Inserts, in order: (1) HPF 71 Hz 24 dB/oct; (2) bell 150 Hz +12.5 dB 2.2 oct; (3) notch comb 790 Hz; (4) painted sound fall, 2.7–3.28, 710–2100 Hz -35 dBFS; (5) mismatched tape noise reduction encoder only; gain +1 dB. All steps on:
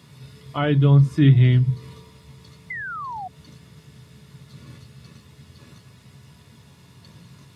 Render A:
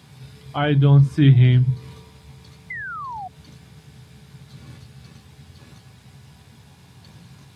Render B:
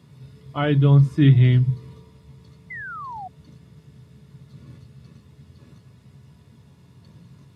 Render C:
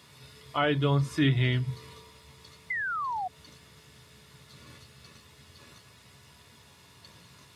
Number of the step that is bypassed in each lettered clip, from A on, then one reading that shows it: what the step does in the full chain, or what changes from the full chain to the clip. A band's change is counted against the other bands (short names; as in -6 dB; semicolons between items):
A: 3, loudness change +1.5 LU; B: 5, momentary loudness spread change +1 LU; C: 2, 125 Hz band -11.5 dB